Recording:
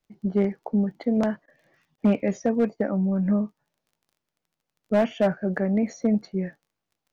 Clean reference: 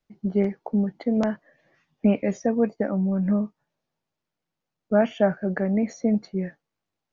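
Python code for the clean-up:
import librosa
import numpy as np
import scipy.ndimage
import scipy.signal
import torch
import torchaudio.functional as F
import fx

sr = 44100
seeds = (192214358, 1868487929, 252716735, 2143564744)

y = fx.fix_declip(x, sr, threshold_db=-14.0)
y = fx.fix_declick_ar(y, sr, threshold=6.5)
y = fx.fix_interpolate(y, sr, at_s=(1.46, 1.96), length_ms=18.0)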